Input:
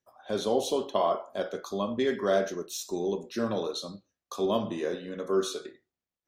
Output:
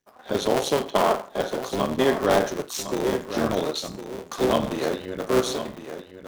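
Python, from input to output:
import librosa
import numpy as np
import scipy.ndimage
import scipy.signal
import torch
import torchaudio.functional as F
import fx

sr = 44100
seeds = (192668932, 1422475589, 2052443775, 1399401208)

y = fx.cycle_switch(x, sr, every=3, mode='muted')
y = y + 10.0 ** (-10.5 / 20.0) * np.pad(y, (int(1058 * sr / 1000.0), 0))[:len(y)]
y = y * librosa.db_to_amplitude(7.0)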